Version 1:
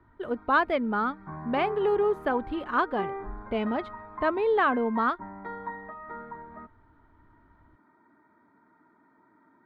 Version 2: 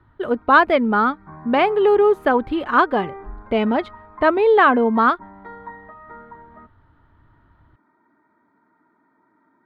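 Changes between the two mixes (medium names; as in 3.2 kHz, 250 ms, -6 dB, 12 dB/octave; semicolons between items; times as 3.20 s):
speech +10.0 dB; master: add bass shelf 72 Hz -7.5 dB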